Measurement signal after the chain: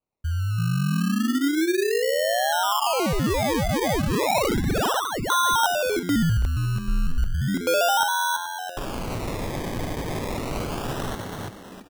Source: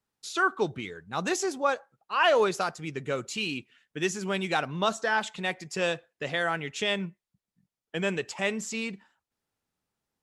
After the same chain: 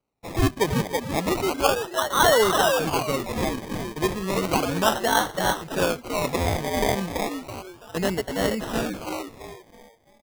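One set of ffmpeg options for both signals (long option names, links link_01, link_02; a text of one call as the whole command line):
ffmpeg -i in.wav -filter_complex "[0:a]asplit=6[link_01][link_02][link_03][link_04][link_05][link_06];[link_02]adelay=332,afreqshift=88,volume=-3.5dB[link_07];[link_03]adelay=664,afreqshift=176,volume=-12.6dB[link_08];[link_04]adelay=996,afreqshift=264,volume=-21.7dB[link_09];[link_05]adelay=1328,afreqshift=352,volume=-30.9dB[link_10];[link_06]adelay=1660,afreqshift=440,volume=-40dB[link_11];[link_01][link_07][link_08][link_09][link_10][link_11]amix=inputs=6:normalize=0,acrusher=samples=25:mix=1:aa=0.000001:lfo=1:lforange=15:lforate=0.33,volume=4dB" out.wav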